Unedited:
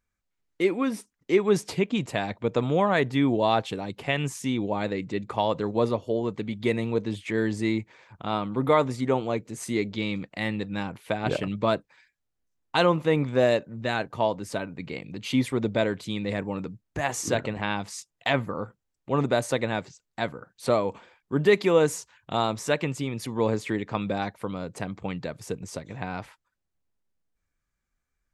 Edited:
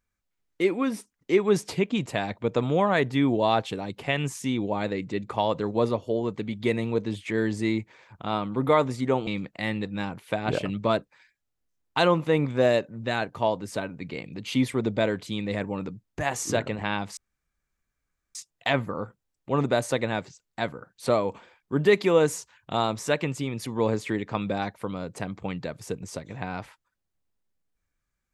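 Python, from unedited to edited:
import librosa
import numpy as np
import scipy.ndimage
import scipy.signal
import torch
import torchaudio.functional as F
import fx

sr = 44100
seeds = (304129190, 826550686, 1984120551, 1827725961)

y = fx.edit(x, sr, fx.cut(start_s=9.27, length_s=0.78),
    fx.insert_room_tone(at_s=17.95, length_s=1.18), tone=tone)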